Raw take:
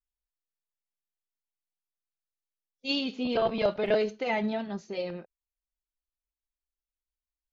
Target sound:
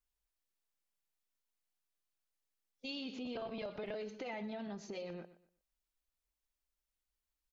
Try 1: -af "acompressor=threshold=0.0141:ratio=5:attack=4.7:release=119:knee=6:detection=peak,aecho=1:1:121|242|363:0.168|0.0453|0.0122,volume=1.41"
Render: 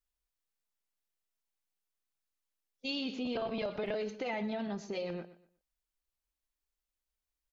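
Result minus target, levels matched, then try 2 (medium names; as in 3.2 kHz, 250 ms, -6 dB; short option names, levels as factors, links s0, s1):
compression: peak gain reduction -7 dB
-af "acompressor=threshold=0.00531:ratio=5:attack=4.7:release=119:knee=6:detection=peak,aecho=1:1:121|242|363:0.168|0.0453|0.0122,volume=1.41"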